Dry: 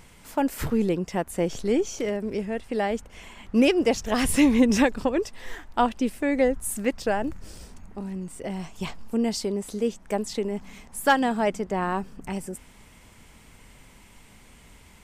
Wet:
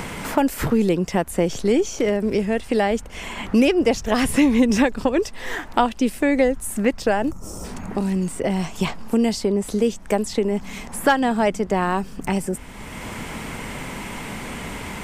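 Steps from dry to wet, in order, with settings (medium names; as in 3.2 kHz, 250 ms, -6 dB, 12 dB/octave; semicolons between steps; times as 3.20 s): time-frequency box 7.31–7.64 s, 1.4–5.2 kHz -16 dB; three bands compressed up and down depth 70%; trim +5 dB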